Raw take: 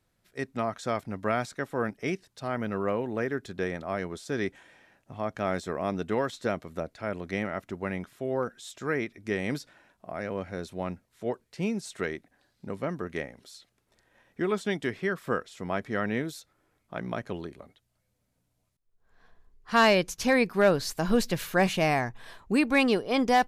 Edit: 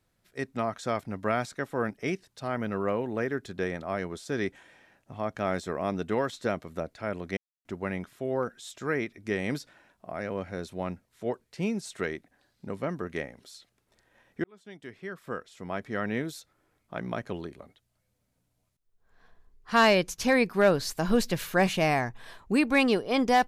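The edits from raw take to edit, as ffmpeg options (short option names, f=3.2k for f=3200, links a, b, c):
-filter_complex "[0:a]asplit=4[a][b][c][d];[a]atrim=end=7.37,asetpts=PTS-STARTPTS,afade=t=out:st=7.366:d=0.004:c=hsin[e];[b]atrim=start=7.37:end=7.65,asetpts=PTS-STARTPTS,volume=0[f];[c]atrim=start=7.65:end=14.44,asetpts=PTS-STARTPTS,afade=t=in:d=0.004:c=hsin,afade=t=out:st=6.786:d=0.004:c=hsin[g];[d]atrim=start=14.44,asetpts=PTS-STARTPTS,afade=t=in:d=1.92[h];[e][f][g][h]concat=n=4:v=0:a=1"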